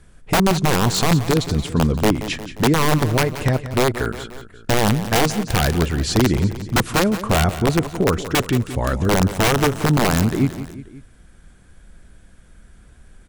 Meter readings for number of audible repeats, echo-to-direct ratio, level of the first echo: 3, -11.5 dB, -13.0 dB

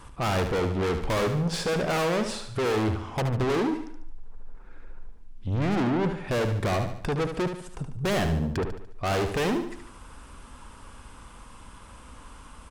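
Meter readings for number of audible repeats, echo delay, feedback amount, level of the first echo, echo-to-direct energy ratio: 5, 73 ms, 46%, -8.0 dB, -7.0 dB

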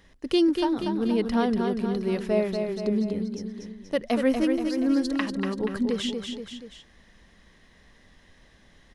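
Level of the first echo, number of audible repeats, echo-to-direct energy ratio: -5.5 dB, 3, -4.0 dB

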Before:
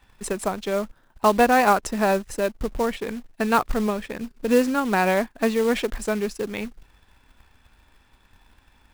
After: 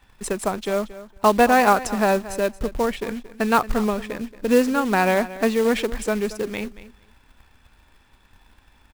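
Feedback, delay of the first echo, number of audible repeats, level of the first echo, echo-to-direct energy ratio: 15%, 0.228 s, 2, -16.0 dB, -16.0 dB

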